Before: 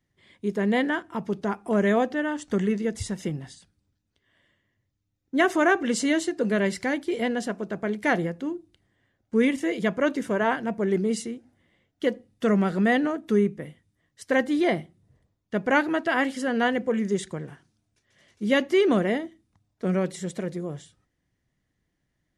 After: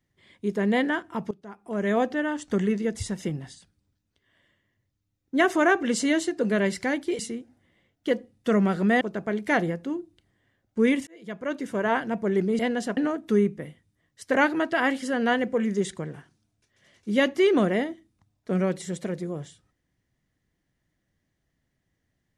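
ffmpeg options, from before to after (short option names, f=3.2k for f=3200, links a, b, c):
-filter_complex "[0:a]asplit=8[a][b][c][d][e][f][g][h];[a]atrim=end=1.31,asetpts=PTS-STARTPTS,afade=t=out:st=1.306:d=0.004:c=hsin:silence=0.125893[i];[b]atrim=start=1.31:end=7.192,asetpts=PTS-STARTPTS,afade=t=in:d=0.72:c=qua:silence=0.125893[j];[c]atrim=start=11.148:end=12.972[k];[d]atrim=start=7.568:end=9.63,asetpts=PTS-STARTPTS,afade=t=out:st=2.058:d=0.004:c=hsin[l];[e]atrim=start=9.63:end=11.152,asetpts=PTS-STARTPTS,afade=t=in:d=0.89[m];[f]atrim=start=7.188:end=7.572[n];[g]atrim=start=12.968:end=14.352[o];[h]atrim=start=15.688[p];[i][j]concat=n=2:v=0:a=1[q];[q][k]acrossfade=d=0.004:c1=hsin:c2=hsin[r];[l][m]concat=n=2:v=0:a=1[s];[r][s]acrossfade=d=0.004:c1=hsin:c2=hsin[t];[t][n]acrossfade=d=0.004:c1=hsin:c2=hsin[u];[u][o]acrossfade=d=0.004:c1=hsin:c2=hsin[v];[v][p]acrossfade=d=0.004:c1=hsin:c2=hsin"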